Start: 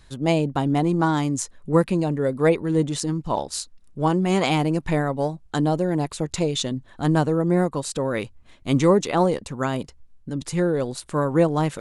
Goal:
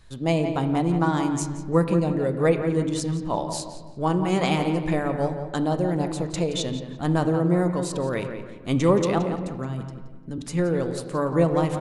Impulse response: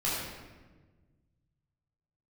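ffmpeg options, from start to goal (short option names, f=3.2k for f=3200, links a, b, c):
-filter_complex "[0:a]asettb=1/sr,asplit=3[a][b][c];[a]atrim=end=9.184[d];[b]atrim=start=9.18:end=10.38,asetpts=PTS-STARTPTS,afade=t=in:d=0.004:c=qsin,afade=t=out:st=1.196:d=0.004:c=qsin,acrossover=split=270[e][f];[f]acompressor=threshold=-36dB:ratio=3[g];[e][g]amix=inputs=2:normalize=0[h];[c]atrim=start=10.376[i];[d][h]acrossfade=d=0.004:c1=hsin:c2=qsin[j];[j][i]acrossfade=d=0.004:c1=qsin:c2=hsin,asplit=2[k][l];[l]adelay=173,lowpass=f=3.1k:p=1,volume=-9dB,asplit=2[m][n];[n]adelay=173,lowpass=f=3.1k:p=1,volume=0.38,asplit=2[o][p];[p]adelay=173,lowpass=f=3.1k:p=1,volume=0.38,asplit=2[q][r];[r]adelay=173,lowpass=f=3.1k:p=1,volume=0.38[s];[k][m][o][q][s]amix=inputs=5:normalize=0,asplit=2[t][u];[1:a]atrim=start_sample=2205,lowpass=3.6k[v];[u][v]afir=irnorm=-1:irlink=0,volume=-16dB[w];[t][w]amix=inputs=2:normalize=0,volume=-3.5dB"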